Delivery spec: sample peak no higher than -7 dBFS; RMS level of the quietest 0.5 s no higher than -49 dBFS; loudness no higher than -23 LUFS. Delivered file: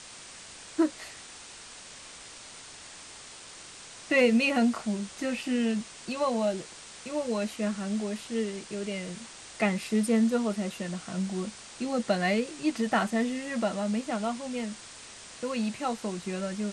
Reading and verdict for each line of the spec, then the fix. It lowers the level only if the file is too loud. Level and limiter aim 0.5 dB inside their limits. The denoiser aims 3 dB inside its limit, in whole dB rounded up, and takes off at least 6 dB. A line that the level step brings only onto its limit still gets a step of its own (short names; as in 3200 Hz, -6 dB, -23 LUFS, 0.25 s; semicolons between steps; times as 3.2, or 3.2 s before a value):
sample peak -13.0 dBFS: OK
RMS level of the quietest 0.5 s -47 dBFS: fail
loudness -29.5 LUFS: OK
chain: denoiser 6 dB, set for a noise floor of -47 dBFS